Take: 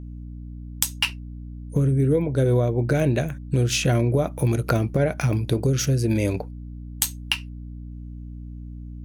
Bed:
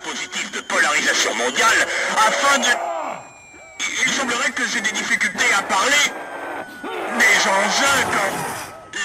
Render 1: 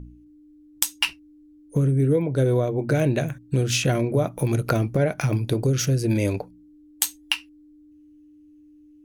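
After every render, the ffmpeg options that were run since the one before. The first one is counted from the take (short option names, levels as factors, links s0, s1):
-af "bandreject=f=60:t=h:w=4,bandreject=f=120:t=h:w=4,bandreject=f=180:t=h:w=4,bandreject=f=240:t=h:w=4"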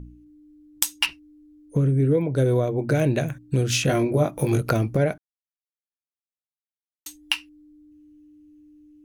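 -filter_complex "[0:a]asettb=1/sr,asplit=3[s0][s1][s2];[s0]atrim=end=1.064[s3];[s1]atrim=start=1.06:end=2.18,asetpts=PTS-STARTPTS,afade=t=in:d=0.004:c=qsin,afade=t=out:st=1.116:d=0.004:c=qsin,acrossover=split=4900[s4][s5];[s5]acompressor=threshold=0.00158:ratio=4:attack=1:release=60[s6];[s4][s6]amix=inputs=2:normalize=0[s7];[s2]atrim=start=2.176[s8];[s3][s7]acrossfade=d=0.004:c1=hsin:c2=qsin[s9];[s9][s8]acrossfade=d=0.004:c1=qsin:c2=hsin,asettb=1/sr,asplit=3[s10][s11][s12];[s10]atrim=end=3.874[s13];[s11]atrim=start=3.87:end=4.6,asetpts=PTS-STARTPTS,afade=t=in:d=0.004:c=qsin,afade=t=out:st=0.726:d=0.004:c=qsin,asplit=2[s14][s15];[s15]adelay=20,volume=0.708[s16];[s14][s16]amix=inputs=2:normalize=0,atrim=end_sample=32193[s17];[s12]atrim=start=4.596[s18];[s13][s17]acrossfade=d=0.004:c1=hsin:c2=qsin[s19];[s19][s18]acrossfade=d=0.004:c1=qsin:c2=hsin,asplit=3[s20][s21][s22];[s20]atrim=end=5.18,asetpts=PTS-STARTPTS,afade=t=out:st=5.176:d=0.004:c=hsin[s23];[s21]atrim=start=5.18:end=7.06,asetpts=PTS-STARTPTS,volume=0[s24];[s22]atrim=start=7.06,asetpts=PTS-STARTPTS,afade=t=in:d=0.004:c=hsin[s25];[s23][s24][s25]concat=n=3:v=0:a=1"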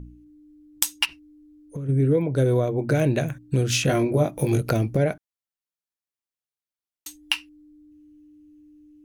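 -filter_complex "[0:a]asplit=3[s0][s1][s2];[s0]afade=t=out:st=1.04:d=0.02[s3];[s1]acompressor=threshold=0.0355:ratio=6:attack=3.2:release=140:knee=1:detection=peak,afade=t=in:st=1.04:d=0.02,afade=t=out:st=1.88:d=0.02[s4];[s2]afade=t=in:st=1.88:d=0.02[s5];[s3][s4][s5]amix=inputs=3:normalize=0,asettb=1/sr,asplit=3[s6][s7][s8];[s6]atrim=end=4.224[s9];[s7]atrim=start=4.22:end=5.06,asetpts=PTS-STARTPTS,afade=t=in:d=0.004:c=qsin,afade=t=out:st=0.836:d=0.004:c=qsin,equalizer=f=1200:t=o:w=0.77:g=-5.5[s10];[s8]atrim=start=5.056[s11];[s9][s10]acrossfade=d=0.004:c1=hsin:c2=qsin[s12];[s12][s11]acrossfade=d=0.004:c1=qsin:c2=hsin"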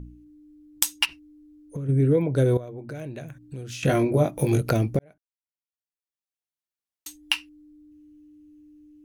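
-filter_complex "[0:a]asettb=1/sr,asplit=3[s0][s1][s2];[s0]atrim=end=2.574[s3];[s1]atrim=start=2.57:end=3.83,asetpts=PTS-STARTPTS,afade=t=in:d=0.004:c=qsin,afade=t=out:st=1.256:d=0.004:c=qsin,acompressor=threshold=0.00562:ratio=2:attack=3.2:release=140:knee=1:detection=peak[s4];[s2]atrim=start=3.826[s5];[s3][s4]acrossfade=d=0.004:c1=hsin:c2=qsin[s6];[s6][s5]acrossfade=d=0.004:c1=qsin:c2=hsin,asplit=2[s7][s8];[s7]atrim=end=4.99,asetpts=PTS-STARTPTS,afade=t=out:st=4.986:d=0.004:c=hsin[s9];[s8]atrim=start=4.99,asetpts=PTS-STARTPTS,afade=t=in:d=2.35[s10];[s9][s10]concat=n=2:v=0:a=1"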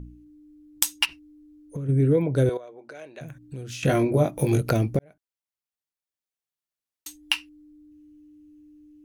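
-filter_complex "[0:a]asettb=1/sr,asplit=3[s0][s1][s2];[s0]atrim=end=2.494[s3];[s1]atrim=start=2.49:end=3.21,asetpts=PTS-STARTPTS,afade=t=in:d=0.004:c=qsin,afade=t=out:st=0.716:d=0.004:c=qsin,highpass=540,lowpass=7300[s4];[s2]atrim=start=3.206[s5];[s3][s4]acrossfade=d=0.004:c1=hsin:c2=qsin[s6];[s6][s5]acrossfade=d=0.004:c1=qsin:c2=hsin"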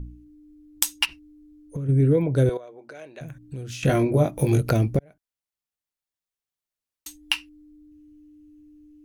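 -af "lowshelf=f=78:g=8.5"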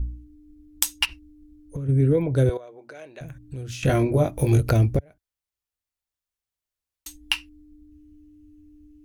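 -af "lowshelf=f=110:t=q:w=1.5:g=8"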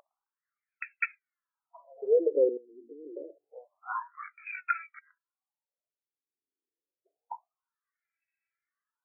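-af "aphaser=in_gain=1:out_gain=1:delay=3.1:decay=0.63:speed=0.3:type=sinusoidal,afftfilt=real='re*between(b*sr/1024,330*pow(1900/330,0.5+0.5*sin(2*PI*0.27*pts/sr))/1.41,330*pow(1900/330,0.5+0.5*sin(2*PI*0.27*pts/sr))*1.41)':imag='im*between(b*sr/1024,330*pow(1900/330,0.5+0.5*sin(2*PI*0.27*pts/sr))/1.41,330*pow(1900/330,0.5+0.5*sin(2*PI*0.27*pts/sr))*1.41)':win_size=1024:overlap=0.75"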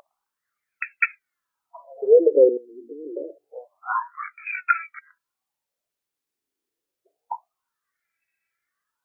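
-af "volume=2.99"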